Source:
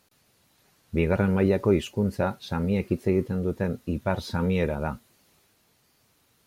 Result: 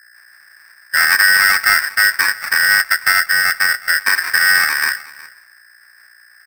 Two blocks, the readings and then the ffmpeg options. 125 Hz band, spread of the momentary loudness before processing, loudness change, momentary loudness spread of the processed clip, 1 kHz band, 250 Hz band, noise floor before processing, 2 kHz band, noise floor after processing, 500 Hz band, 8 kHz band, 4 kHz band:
under -15 dB, 7 LU, +13.5 dB, 6 LU, +13.0 dB, under -20 dB, -66 dBFS, +28.0 dB, -48 dBFS, -14.5 dB, +29.5 dB, +24.5 dB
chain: -filter_complex "[0:a]equalizer=f=4000:w=0.87:g=5,acrusher=samples=32:mix=1:aa=0.000001,tiltshelf=f=760:g=7.5,asoftclip=type=tanh:threshold=0.237,agate=range=0.0224:threshold=0.00224:ratio=3:detection=peak,asplit=2[s0][s1];[s1]aecho=0:1:367:0.0891[s2];[s0][s2]amix=inputs=2:normalize=0,acrossover=split=280|3000[s3][s4][s5];[s4]acompressor=threshold=0.02:ratio=1.5[s6];[s3][s6][s5]amix=inputs=3:normalize=0,aeval=exprs='val(0)+0.002*(sin(2*PI*60*n/s)+sin(2*PI*2*60*n/s)/2+sin(2*PI*3*60*n/s)/3+sin(2*PI*4*60*n/s)/4+sin(2*PI*5*60*n/s)/5)':c=same,aeval=exprs='val(0)*sgn(sin(2*PI*1700*n/s))':c=same,volume=2.51"

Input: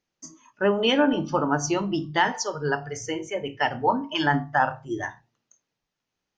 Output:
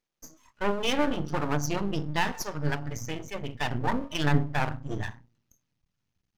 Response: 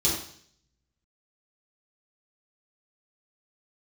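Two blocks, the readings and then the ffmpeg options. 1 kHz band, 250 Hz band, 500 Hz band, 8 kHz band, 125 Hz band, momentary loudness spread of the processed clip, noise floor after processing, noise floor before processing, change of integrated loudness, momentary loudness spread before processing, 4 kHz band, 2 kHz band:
-7.0 dB, -5.0 dB, -7.0 dB, -5.0 dB, +3.0 dB, 10 LU, -82 dBFS, -84 dBFS, -5.0 dB, 10 LU, -5.5 dB, -6.0 dB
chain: -af "asubboost=boost=9:cutoff=150,aeval=exprs='max(val(0),0)':c=same,volume=0.891"

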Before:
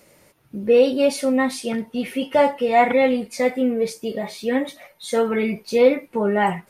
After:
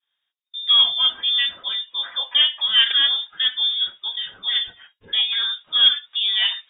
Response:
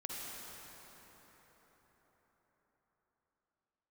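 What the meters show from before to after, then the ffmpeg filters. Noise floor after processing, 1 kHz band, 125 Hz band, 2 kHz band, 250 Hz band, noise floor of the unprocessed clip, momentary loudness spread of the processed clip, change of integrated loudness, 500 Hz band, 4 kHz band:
-79 dBFS, -15.0 dB, no reading, -0.5 dB, under -30 dB, -56 dBFS, 11 LU, +2.5 dB, under -30 dB, +21.5 dB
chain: -af "agate=range=0.0224:threshold=0.01:ratio=3:detection=peak,aeval=exprs='0.596*(cos(1*acos(clip(val(0)/0.596,-1,1)))-cos(1*PI/2))+0.0335*(cos(3*acos(clip(val(0)/0.596,-1,1)))-cos(3*PI/2))':c=same,lowpass=f=3200:t=q:w=0.5098,lowpass=f=3200:t=q:w=0.6013,lowpass=f=3200:t=q:w=0.9,lowpass=f=3200:t=q:w=2.563,afreqshift=-3800"

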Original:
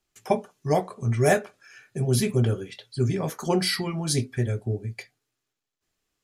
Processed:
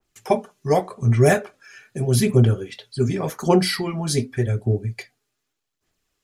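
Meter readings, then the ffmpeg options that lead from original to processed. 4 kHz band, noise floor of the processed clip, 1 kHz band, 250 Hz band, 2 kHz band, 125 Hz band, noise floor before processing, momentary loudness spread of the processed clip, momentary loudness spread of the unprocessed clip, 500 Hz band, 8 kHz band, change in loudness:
+1.5 dB, -78 dBFS, +4.0 dB, +5.0 dB, +3.0 dB, +5.5 dB, -83 dBFS, 11 LU, 10 LU, +5.0 dB, +2.0 dB, +4.5 dB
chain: -af "aphaser=in_gain=1:out_gain=1:delay=5:decay=0.35:speed=0.85:type=sinusoidal,adynamicequalizer=threshold=0.00794:dfrequency=2200:dqfactor=0.7:tfrequency=2200:tqfactor=0.7:attack=5:release=100:ratio=0.375:range=2:mode=cutabove:tftype=highshelf,volume=1.5"

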